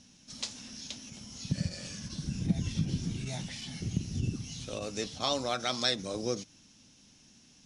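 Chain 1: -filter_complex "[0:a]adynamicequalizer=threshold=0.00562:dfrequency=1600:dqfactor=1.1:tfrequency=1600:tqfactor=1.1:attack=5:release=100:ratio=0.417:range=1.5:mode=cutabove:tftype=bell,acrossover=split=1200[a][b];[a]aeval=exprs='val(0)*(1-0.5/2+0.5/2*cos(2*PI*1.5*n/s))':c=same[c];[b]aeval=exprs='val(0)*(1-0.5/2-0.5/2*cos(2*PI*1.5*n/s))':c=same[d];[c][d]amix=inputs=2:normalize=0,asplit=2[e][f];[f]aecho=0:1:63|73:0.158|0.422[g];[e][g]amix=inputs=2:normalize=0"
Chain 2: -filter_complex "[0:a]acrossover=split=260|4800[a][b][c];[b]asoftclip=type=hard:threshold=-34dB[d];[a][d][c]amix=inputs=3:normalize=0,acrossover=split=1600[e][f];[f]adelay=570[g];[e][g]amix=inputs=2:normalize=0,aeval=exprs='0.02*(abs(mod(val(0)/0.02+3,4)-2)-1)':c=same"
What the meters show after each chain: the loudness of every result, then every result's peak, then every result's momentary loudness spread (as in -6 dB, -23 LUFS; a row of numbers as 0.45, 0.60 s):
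-36.5, -40.5 LUFS; -16.0, -34.0 dBFS; 11, 12 LU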